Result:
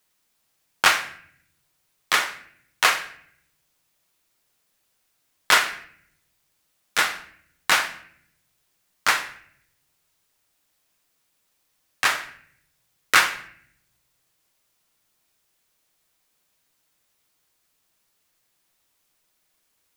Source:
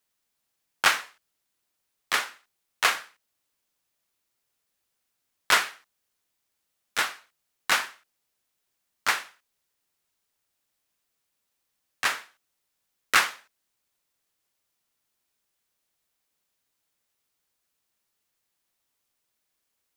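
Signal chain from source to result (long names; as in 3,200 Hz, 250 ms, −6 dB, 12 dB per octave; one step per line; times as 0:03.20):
in parallel at 0 dB: downward compressor, threshold −30 dBFS, peak gain reduction 14.5 dB
on the sum: convolution reverb RT60 0.65 s, pre-delay 6 ms, DRR 7.5 dB
level +1.5 dB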